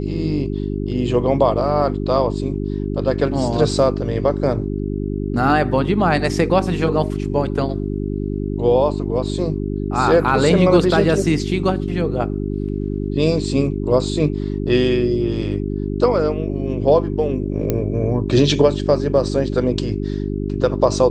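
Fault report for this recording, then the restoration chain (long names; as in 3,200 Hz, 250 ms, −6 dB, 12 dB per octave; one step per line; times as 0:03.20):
mains hum 50 Hz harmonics 8 −23 dBFS
0:17.70: click −6 dBFS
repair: click removal
hum removal 50 Hz, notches 8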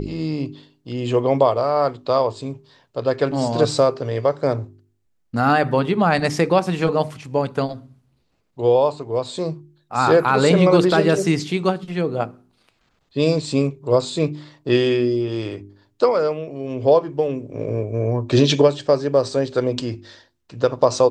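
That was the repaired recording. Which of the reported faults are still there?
none of them is left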